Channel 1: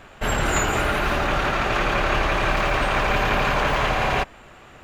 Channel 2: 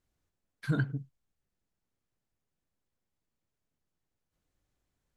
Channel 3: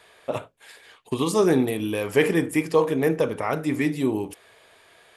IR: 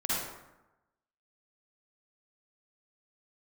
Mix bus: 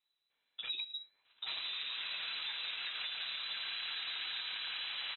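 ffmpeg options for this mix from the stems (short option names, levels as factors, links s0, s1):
-filter_complex "[0:a]acrossover=split=2600[s0][s1];[s1]acompressor=threshold=0.0126:ratio=4:attack=1:release=60[s2];[s0][s2]amix=inputs=2:normalize=0,adelay=1250,volume=0.211[s3];[1:a]volume=0.631[s4];[2:a]adelay=300,volume=0.141[s5];[s3][s5]amix=inputs=2:normalize=0,agate=range=0.2:threshold=0.00158:ratio=16:detection=peak,alimiter=level_in=1.19:limit=0.0631:level=0:latency=1:release=220,volume=0.841,volume=1[s6];[s4][s6]amix=inputs=2:normalize=0,highshelf=f=3000:g=6.5,lowpass=f=3400:t=q:w=0.5098,lowpass=f=3400:t=q:w=0.6013,lowpass=f=3400:t=q:w=0.9,lowpass=f=3400:t=q:w=2.563,afreqshift=-4000,acompressor=threshold=0.0126:ratio=4"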